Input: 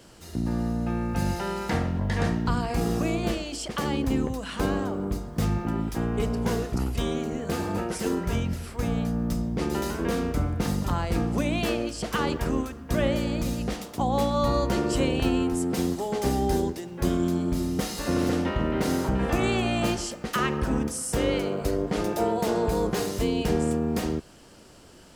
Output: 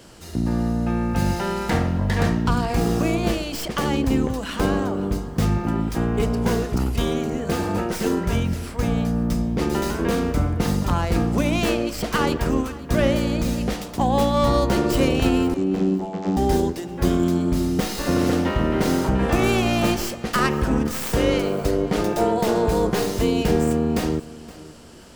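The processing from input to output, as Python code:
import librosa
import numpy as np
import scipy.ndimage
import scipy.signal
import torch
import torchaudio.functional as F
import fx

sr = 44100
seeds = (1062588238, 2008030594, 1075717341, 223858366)

y = fx.tracing_dist(x, sr, depth_ms=0.16)
y = fx.vocoder(y, sr, bands=32, carrier='saw', carrier_hz=95.0, at=(15.54, 16.37))
y = fx.echo_feedback(y, sr, ms=520, feedback_pct=25, wet_db=-19.0)
y = F.gain(torch.from_numpy(y), 5.0).numpy()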